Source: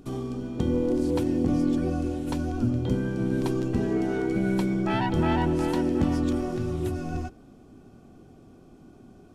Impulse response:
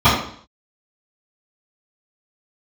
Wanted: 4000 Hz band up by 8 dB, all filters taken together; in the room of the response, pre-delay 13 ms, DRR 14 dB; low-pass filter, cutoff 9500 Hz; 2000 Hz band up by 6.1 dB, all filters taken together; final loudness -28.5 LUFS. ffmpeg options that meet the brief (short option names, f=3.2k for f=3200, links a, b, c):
-filter_complex "[0:a]lowpass=9.5k,equalizer=f=2k:t=o:g=6,equalizer=f=4k:t=o:g=8.5,asplit=2[a][b];[1:a]atrim=start_sample=2205,adelay=13[c];[b][c]afir=irnorm=-1:irlink=0,volume=-41dB[d];[a][d]amix=inputs=2:normalize=0,volume=-3dB"